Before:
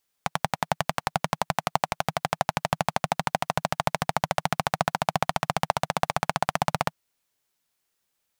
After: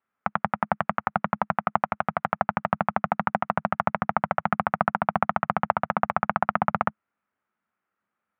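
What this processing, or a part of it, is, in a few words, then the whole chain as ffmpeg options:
bass cabinet: -af "highpass=frequency=82:width=0.5412,highpass=frequency=82:width=1.3066,equalizer=frequency=140:width_type=q:width=4:gain=-8,equalizer=frequency=210:width_type=q:width=4:gain=9,equalizer=frequency=450:width_type=q:width=4:gain=-3,equalizer=frequency=1300:width_type=q:width=4:gain=9,lowpass=frequency=2100:width=0.5412,lowpass=frequency=2100:width=1.3066"

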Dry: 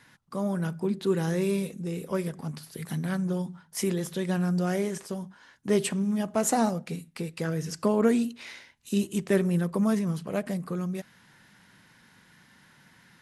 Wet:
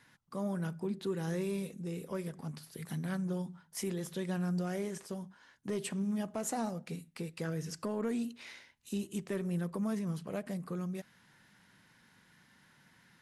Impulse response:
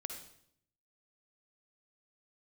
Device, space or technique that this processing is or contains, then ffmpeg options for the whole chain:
soft clipper into limiter: -af "asoftclip=type=tanh:threshold=-12.5dB,alimiter=limit=-20.5dB:level=0:latency=1:release=244,volume=-6.5dB"

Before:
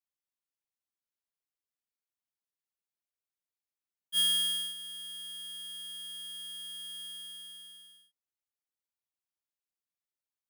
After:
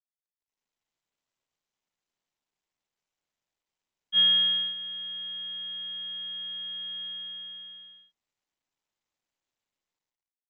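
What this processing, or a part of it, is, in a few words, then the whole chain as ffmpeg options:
Bluetooth headset: -af "highpass=frequency=120:width=0.5412,highpass=frequency=120:width=1.3066,dynaudnorm=framelen=120:gausssize=9:maxgain=10dB,aresample=8000,aresample=44100,volume=-3dB" -ar 16000 -c:a sbc -b:a 64k

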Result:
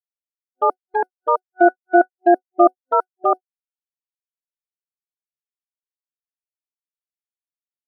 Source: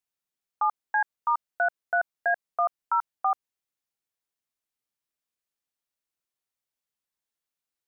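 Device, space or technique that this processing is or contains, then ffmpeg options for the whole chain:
octave pedal: -filter_complex "[0:a]asettb=1/sr,asplit=3[link_01][link_02][link_03];[link_01]atrim=end=0.974[link_04];[link_02]atrim=start=0.97:end=2.66,asetpts=PTS-STARTPTS,afade=type=in:duration=0.004:curve=qsin,afade=type=out:start_time=1.686:duration=0.004:curve=qsin,highpass=frequency=280:poles=1[link_05];[link_03]atrim=start=2.656[link_06];[link_04][link_05]acrossfade=duration=0.004:curve1=hsin:curve2=qsin[link_07];[link_07][link_06]acrossfade=duration=0.004:curve1=qsin:curve2=hsin,agate=range=-58dB:threshold=-26dB:ratio=16:detection=peak,superequalizer=8b=2.51:11b=0.282:14b=0.562:15b=0.282:16b=2.51,asplit=2[link_08][link_09];[link_09]asetrate=22050,aresample=44100,atempo=2,volume=-3dB[link_10];[link_08][link_10]amix=inputs=2:normalize=0,volume=6.5dB"

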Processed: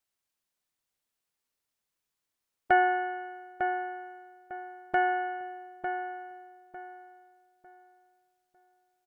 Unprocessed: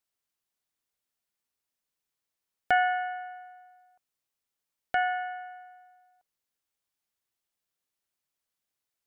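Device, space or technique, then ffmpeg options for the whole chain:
octave pedal: -filter_complex "[0:a]acrossover=split=2500[link_01][link_02];[link_02]acompressor=threshold=-56dB:ratio=4:attack=1:release=60[link_03];[link_01][link_03]amix=inputs=2:normalize=0,asplit=2[link_04][link_05];[link_05]asetrate=22050,aresample=44100,atempo=2,volume=-7dB[link_06];[link_04][link_06]amix=inputs=2:normalize=0,asplit=2[link_07][link_08];[link_08]adelay=901,lowpass=frequency=2200:poles=1,volume=-6.5dB,asplit=2[link_09][link_10];[link_10]adelay=901,lowpass=frequency=2200:poles=1,volume=0.3,asplit=2[link_11][link_12];[link_12]adelay=901,lowpass=frequency=2200:poles=1,volume=0.3,asplit=2[link_13][link_14];[link_14]adelay=901,lowpass=frequency=2200:poles=1,volume=0.3[link_15];[link_07][link_09][link_11][link_13][link_15]amix=inputs=5:normalize=0"

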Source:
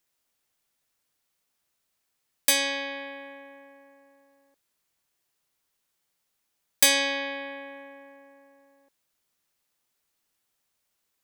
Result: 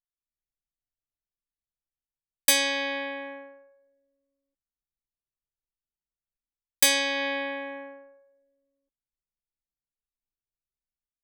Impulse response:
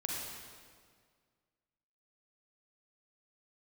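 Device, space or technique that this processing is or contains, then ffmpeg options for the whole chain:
voice memo with heavy noise removal: -af "anlmdn=0.158,dynaudnorm=framelen=110:gausssize=5:maxgain=9.5dB,volume=-4dB"

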